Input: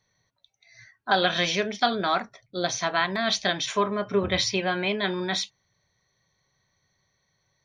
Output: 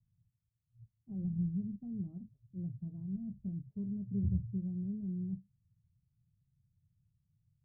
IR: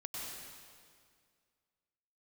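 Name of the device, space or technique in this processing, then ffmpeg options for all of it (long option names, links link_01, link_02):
the neighbour's flat through the wall: -filter_complex "[0:a]lowpass=frequency=170:width=0.5412,lowpass=frequency=170:width=1.3066,equalizer=frequency=100:width_type=o:width=0.96:gain=4.5,asettb=1/sr,asplit=3[link_01][link_02][link_03];[link_01]atrim=end=1.244[link_04];[link_02]atrim=start=1.24:end=1.76,asetpts=PTS-STARTPTS,afade=type=in:duration=0.004:curve=qsin,afade=type=out:start_time=0.516:duration=0.004:curve=qsin,aecho=1:1:1:0.59,atrim=end_sample=22932[link_05];[link_03]atrim=start=1.756[link_06];[link_04][link_05]acrossfade=duration=0.004:curve1=hsin:curve2=qsin[link_07];[link_07][link_06]acrossfade=duration=0.004:curve1=qsin:curve2=hsin,volume=1dB"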